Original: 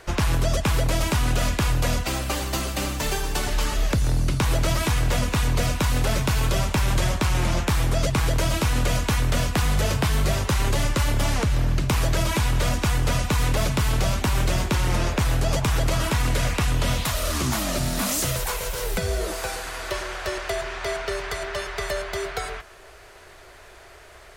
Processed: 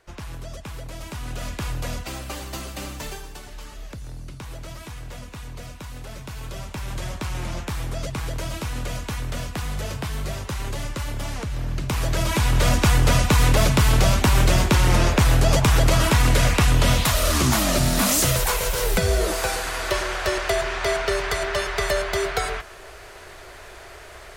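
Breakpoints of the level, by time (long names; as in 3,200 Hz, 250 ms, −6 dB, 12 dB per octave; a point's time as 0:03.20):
0:00.91 −14 dB
0:01.64 −6.5 dB
0:03.01 −6.5 dB
0:03.42 −15 dB
0:06.08 −15 dB
0:07.23 −7 dB
0:11.49 −7 dB
0:12.76 +5 dB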